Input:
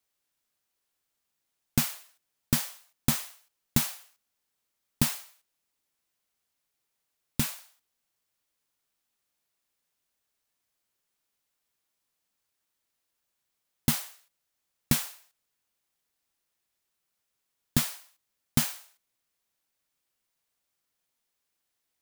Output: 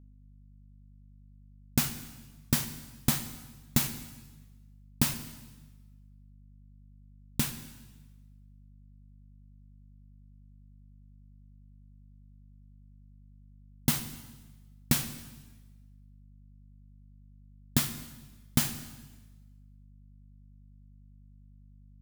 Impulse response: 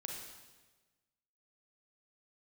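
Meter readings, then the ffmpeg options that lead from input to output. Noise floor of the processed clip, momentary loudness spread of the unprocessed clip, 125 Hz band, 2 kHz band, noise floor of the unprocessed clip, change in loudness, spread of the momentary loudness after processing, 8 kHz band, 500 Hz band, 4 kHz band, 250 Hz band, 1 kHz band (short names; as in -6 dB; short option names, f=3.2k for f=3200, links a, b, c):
-55 dBFS, 16 LU, -0.5 dB, -1.0 dB, -82 dBFS, -2.0 dB, 19 LU, -1.0 dB, -0.5 dB, -1.0 dB, -1.0 dB, -1.0 dB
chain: -filter_complex "[0:a]aeval=exprs='val(0)*gte(abs(val(0)),0.0266)':c=same,aeval=exprs='val(0)+0.00282*(sin(2*PI*50*n/s)+sin(2*PI*2*50*n/s)/2+sin(2*PI*3*50*n/s)/3+sin(2*PI*4*50*n/s)/4+sin(2*PI*5*50*n/s)/5)':c=same,asplit=2[a][b];[1:a]atrim=start_sample=2205,asetrate=42777,aresample=44100[c];[b][c]afir=irnorm=-1:irlink=0,volume=-2dB[d];[a][d]amix=inputs=2:normalize=0,volume=-4.5dB"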